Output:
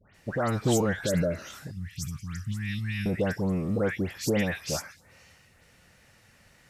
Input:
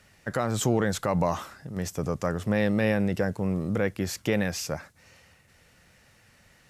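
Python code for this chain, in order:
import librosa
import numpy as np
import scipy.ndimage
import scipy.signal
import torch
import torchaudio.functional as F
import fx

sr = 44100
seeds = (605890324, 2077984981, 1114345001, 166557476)

y = fx.dispersion(x, sr, late='highs', ms=148.0, hz=1900.0)
y = fx.spec_repair(y, sr, seeds[0], start_s=1.0, length_s=0.53, low_hz=650.0, high_hz=1700.0, source='both')
y = fx.cheby1_bandstop(y, sr, low_hz=120.0, high_hz=2600.0, order=2, at=(1.71, 3.06))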